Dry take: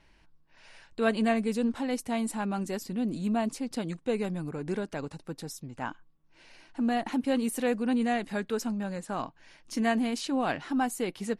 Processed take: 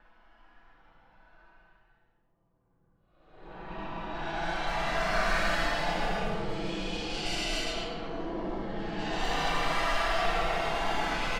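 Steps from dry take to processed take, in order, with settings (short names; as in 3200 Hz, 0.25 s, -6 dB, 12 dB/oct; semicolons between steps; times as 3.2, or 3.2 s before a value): minimum comb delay 3.3 ms; whisperiser; transient shaper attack -2 dB, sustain +10 dB; speaker cabinet 200–6000 Hz, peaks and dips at 250 Hz -9 dB, 540 Hz -5 dB, 770 Hz +5 dB, 1400 Hz +5 dB, 3000 Hz +4 dB, 5200 Hz +3 dB; half-wave rectifier; comb 6 ms, depth 50%; Paulstretch 20×, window 0.05 s, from 0.81; low-pass opened by the level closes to 1200 Hz, open at -25.5 dBFS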